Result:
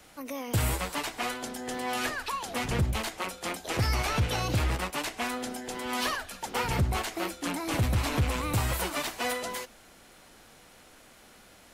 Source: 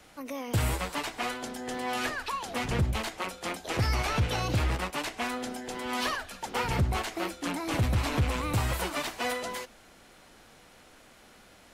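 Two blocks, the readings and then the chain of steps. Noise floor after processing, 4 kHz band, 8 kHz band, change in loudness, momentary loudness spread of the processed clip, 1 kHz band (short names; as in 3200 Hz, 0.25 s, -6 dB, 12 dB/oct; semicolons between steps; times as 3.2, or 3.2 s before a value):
-55 dBFS, +1.0 dB, +3.0 dB, +0.5 dB, 8 LU, 0.0 dB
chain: high shelf 8100 Hz +6.5 dB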